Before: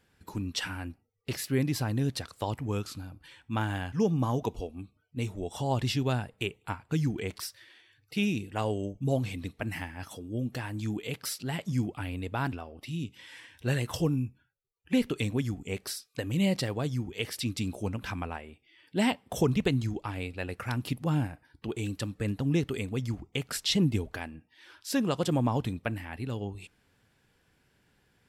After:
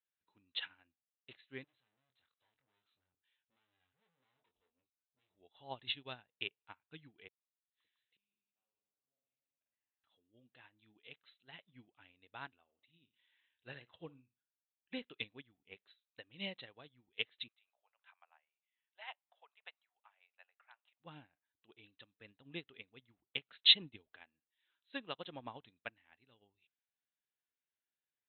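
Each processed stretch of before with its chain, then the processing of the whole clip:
0:01.64–0:05.31: tube saturation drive 45 dB, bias 0.65 + double-tracking delay 23 ms −6.5 dB
0:07.28–0:10.04: reverse bouncing-ball delay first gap 50 ms, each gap 1.25×, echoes 6, each echo −2 dB + flanger 1.7 Hz, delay 4.1 ms, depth 2.5 ms, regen −75% + gate with flip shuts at −36 dBFS, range −32 dB
0:12.63–0:15.04: dynamic equaliser 3,100 Hz, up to −4 dB, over −48 dBFS, Q 0.95 + flutter between parallel walls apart 9.7 metres, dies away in 0.26 s
0:17.48–0:21.00: Butterworth high-pass 640 Hz + upward compression, threshold −54 dBFS + high-frequency loss of the air 390 metres
whole clip: Chebyshev low-pass filter 4,000 Hz, order 10; spectral tilt +4 dB per octave; expander for the loud parts 2.5 to 1, over −43 dBFS; level +1 dB

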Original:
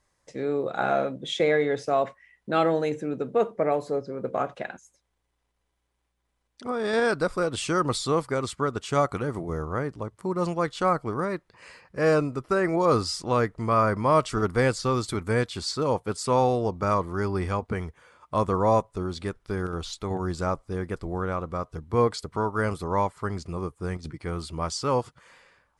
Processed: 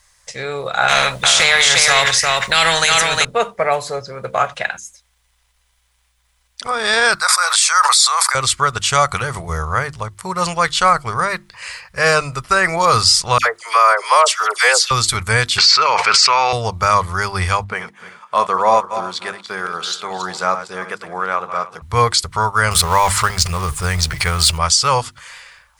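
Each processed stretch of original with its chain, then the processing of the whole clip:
0:00.88–0:03.25: single-tap delay 354 ms −6 dB + every bin compressed towards the loudest bin 2 to 1
0:07.15–0:08.35: high-pass filter 850 Hz 24 dB per octave + parametric band 2,900 Hz −14 dB 0.32 octaves + level that may fall only so fast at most 30 dB per second
0:13.38–0:14.91: Butterworth high-pass 420 Hz + all-pass dispersion lows, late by 77 ms, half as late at 1,600 Hz
0:15.58–0:16.53: loudspeaker in its box 480–5,100 Hz, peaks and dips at 510 Hz −6 dB, 750 Hz −5 dB, 1,300 Hz +3 dB, 2,300 Hz +8 dB, 3,500 Hz −9 dB + envelope flattener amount 100%
0:17.64–0:21.82: feedback delay that plays each chunk backwards 152 ms, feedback 42%, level −9.5 dB + high-pass filter 210 Hz 24 dB per octave + high-shelf EQ 3,800 Hz −11.5 dB
0:22.71–0:24.58: mu-law and A-law mismatch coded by mu + transient designer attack +4 dB, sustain +11 dB
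whole clip: guitar amp tone stack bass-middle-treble 10-0-10; mains-hum notches 50/100/150/200/250/300/350 Hz; boost into a limiter +23 dB; level −1 dB

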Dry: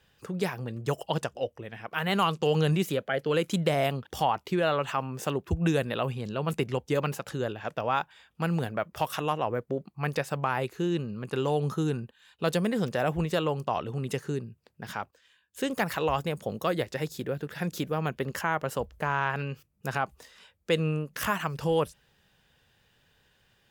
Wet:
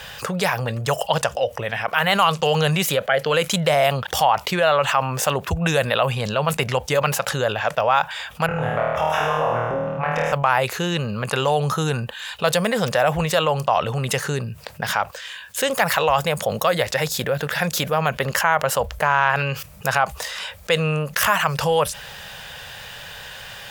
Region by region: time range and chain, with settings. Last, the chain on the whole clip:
0:08.46–0:10.33: moving average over 10 samples + downward compressor, threshold −32 dBFS + flutter between parallel walls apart 4.4 metres, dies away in 1.1 s
whole clip: drawn EQ curve 150 Hz 0 dB, 340 Hz −9 dB, 560 Hz +8 dB; envelope flattener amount 50%

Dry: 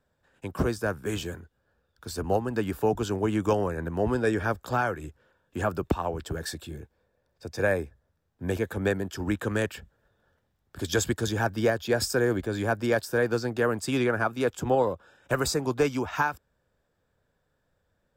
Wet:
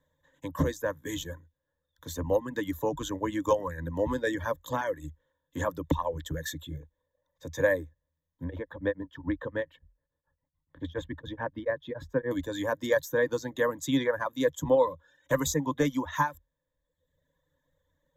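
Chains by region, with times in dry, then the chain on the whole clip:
0:08.44–0:12.31: high-frequency loss of the air 470 metres + tremolo along a rectified sine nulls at 7 Hz
whole clip: reverb reduction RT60 1 s; EQ curve with evenly spaced ripples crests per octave 1.1, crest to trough 16 dB; level −3.5 dB

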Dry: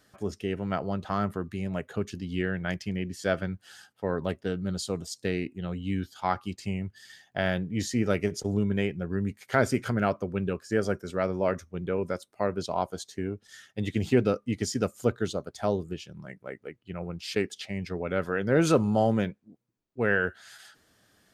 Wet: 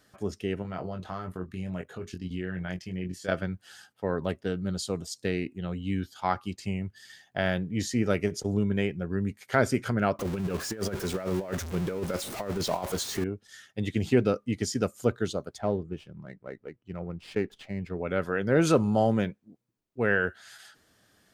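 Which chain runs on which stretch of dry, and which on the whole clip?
0:00.62–0:03.32: output level in coarse steps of 12 dB + double-tracking delay 22 ms −5 dB
0:10.19–0:13.24: converter with a step at zero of −34.5 dBFS + compressor whose output falls as the input rises −29 dBFS, ratio −0.5
0:15.58–0:17.99: head-to-tape spacing loss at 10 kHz 26 dB + windowed peak hold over 3 samples
whole clip: no processing

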